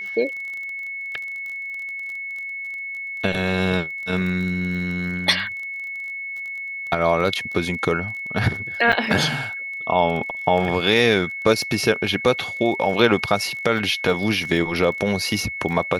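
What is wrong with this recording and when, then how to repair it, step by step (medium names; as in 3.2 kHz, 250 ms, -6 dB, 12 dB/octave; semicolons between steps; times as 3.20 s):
crackle 24 per s -30 dBFS
whine 2.2 kHz -28 dBFS
8.92–8.93 s: dropout 6.8 ms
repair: de-click; band-stop 2.2 kHz, Q 30; interpolate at 8.92 s, 6.8 ms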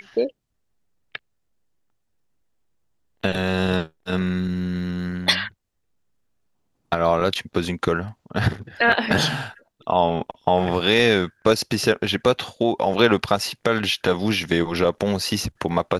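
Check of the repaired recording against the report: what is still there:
nothing left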